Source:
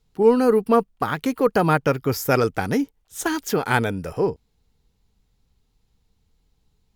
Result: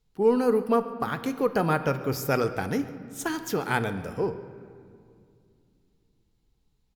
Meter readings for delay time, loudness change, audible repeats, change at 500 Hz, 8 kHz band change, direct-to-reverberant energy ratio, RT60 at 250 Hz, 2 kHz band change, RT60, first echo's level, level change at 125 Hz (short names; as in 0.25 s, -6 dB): 0.14 s, -5.5 dB, 1, -5.5 dB, -6.0 dB, 10.0 dB, 3.6 s, -5.5 dB, 2.4 s, -20.0 dB, -5.5 dB